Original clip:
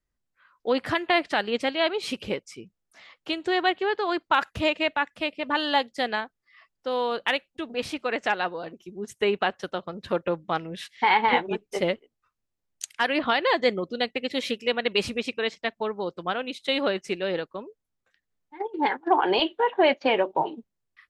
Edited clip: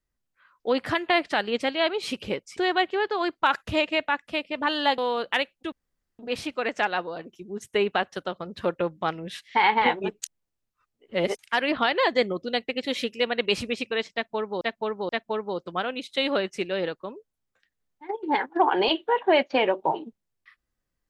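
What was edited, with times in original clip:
2.57–3.45 s: delete
5.86–6.92 s: delete
7.66 s: insert room tone 0.47 s
11.69–12.86 s: reverse
15.60–16.08 s: loop, 3 plays

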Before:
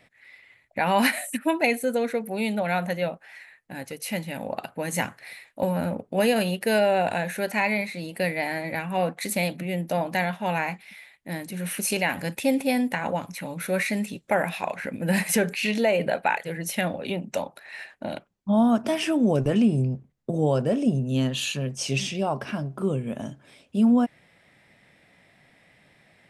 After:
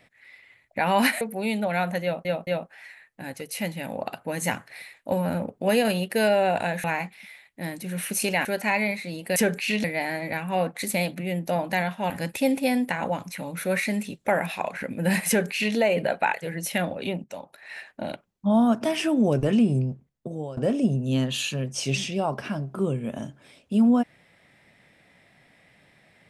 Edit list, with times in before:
1.21–2.16 s: delete
2.98 s: stutter 0.22 s, 3 plays
10.52–12.13 s: move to 7.35 s
15.31–15.79 s: copy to 8.26 s
17.27–17.80 s: fade in, from -16 dB
19.81–20.60 s: fade out, to -17.5 dB

